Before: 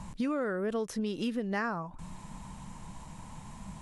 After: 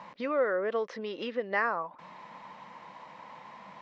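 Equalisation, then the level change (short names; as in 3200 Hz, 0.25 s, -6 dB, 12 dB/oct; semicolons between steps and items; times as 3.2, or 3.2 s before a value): air absorption 130 m; speaker cabinet 450–5300 Hz, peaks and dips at 530 Hz +8 dB, 1100 Hz +4 dB, 2000 Hz +7 dB; +3.0 dB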